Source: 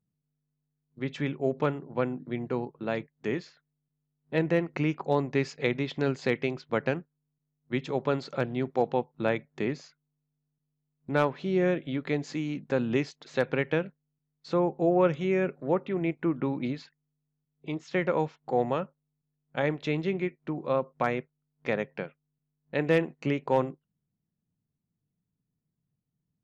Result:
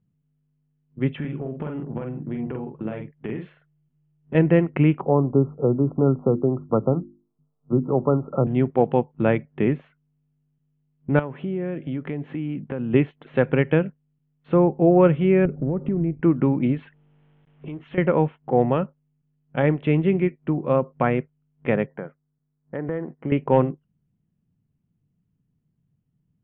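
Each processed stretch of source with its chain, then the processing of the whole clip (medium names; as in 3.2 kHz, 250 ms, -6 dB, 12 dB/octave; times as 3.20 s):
1.17–4.35 s: compression 10:1, threshold -35 dBFS + doubling 46 ms -4 dB
5.02–8.47 s: brick-wall FIR low-pass 1.4 kHz + hum notches 50/100/150/200/250/300/350 Hz + three bands compressed up and down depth 40%
11.19–12.94 s: high-pass 58 Hz + treble shelf 5.7 kHz -9 dB + compression 3:1, threshold -36 dBFS
15.45–16.21 s: tilt EQ -4.5 dB/octave + compression 8:1, threshold -30 dBFS
16.77–17.98 s: companding laws mixed up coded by mu + compression 2.5:1, threshold -45 dBFS + tape noise reduction on one side only encoder only
21.86–23.32 s: Savitzky-Golay filter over 41 samples + bass shelf 220 Hz -7.5 dB + compression 3:1, threshold -34 dBFS
whole clip: elliptic low-pass 3.1 kHz, stop band 40 dB; bass shelf 370 Hz +11 dB; trim +3.5 dB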